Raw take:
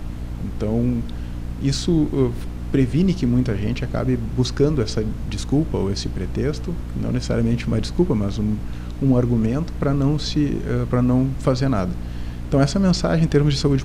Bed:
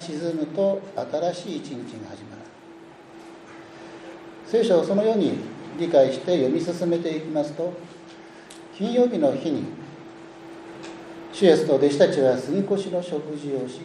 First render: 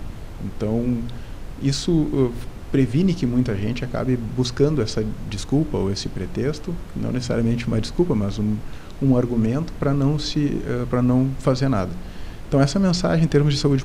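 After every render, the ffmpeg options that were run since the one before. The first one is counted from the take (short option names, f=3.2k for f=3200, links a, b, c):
-af "bandreject=f=60:t=h:w=4,bandreject=f=120:t=h:w=4,bandreject=f=180:t=h:w=4,bandreject=f=240:t=h:w=4,bandreject=f=300:t=h:w=4"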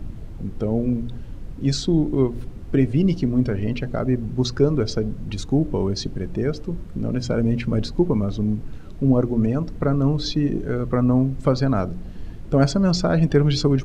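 -af "afftdn=nr=11:nf=-35"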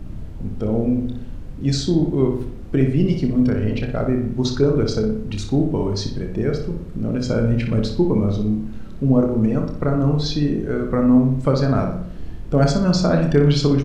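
-filter_complex "[0:a]asplit=2[a][b];[b]adelay=28,volume=-8.5dB[c];[a][c]amix=inputs=2:normalize=0,asplit=2[d][e];[e]adelay=60,lowpass=f=3.6k:p=1,volume=-5dB,asplit=2[f][g];[g]adelay=60,lowpass=f=3.6k:p=1,volume=0.53,asplit=2[h][i];[i]adelay=60,lowpass=f=3.6k:p=1,volume=0.53,asplit=2[j][k];[k]adelay=60,lowpass=f=3.6k:p=1,volume=0.53,asplit=2[l][m];[m]adelay=60,lowpass=f=3.6k:p=1,volume=0.53,asplit=2[n][o];[o]adelay=60,lowpass=f=3.6k:p=1,volume=0.53,asplit=2[p][q];[q]adelay=60,lowpass=f=3.6k:p=1,volume=0.53[r];[d][f][h][j][l][n][p][r]amix=inputs=8:normalize=0"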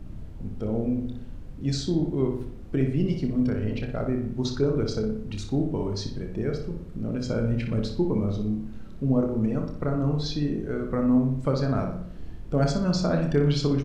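-af "volume=-7dB"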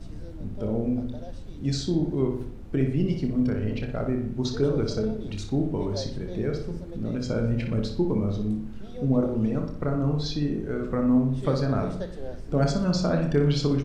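-filter_complex "[1:a]volume=-19.5dB[a];[0:a][a]amix=inputs=2:normalize=0"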